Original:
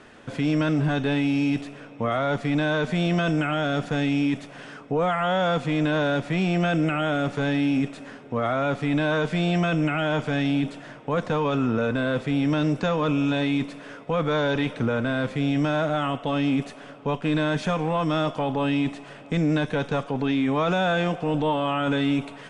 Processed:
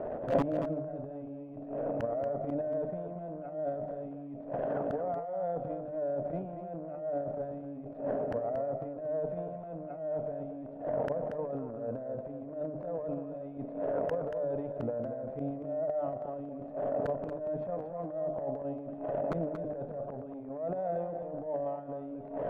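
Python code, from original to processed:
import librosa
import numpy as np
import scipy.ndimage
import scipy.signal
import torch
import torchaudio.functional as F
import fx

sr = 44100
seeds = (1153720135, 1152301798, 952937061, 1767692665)

p1 = fx.lowpass_res(x, sr, hz=620.0, q=7.4)
p2 = fx.hum_notches(p1, sr, base_hz=50, count=8)
p3 = fx.level_steps(p2, sr, step_db=15)
p4 = p2 + (p3 * librosa.db_to_amplitude(1.5))
p5 = fx.gate_flip(p4, sr, shuts_db=-12.0, range_db=-26)
p6 = 10.0 ** (-18.0 / 20.0) * (np.abs((p5 / 10.0 ** (-18.0 / 20.0) + 3.0) % 4.0 - 2.0) - 1.0)
p7 = fx.transient(p6, sr, attack_db=-11, sustain_db=10)
y = p7 + 10.0 ** (-8.0 / 20.0) * np.pad(p7, (int(232 * sr / 1000.0), 0))[:len(p7)]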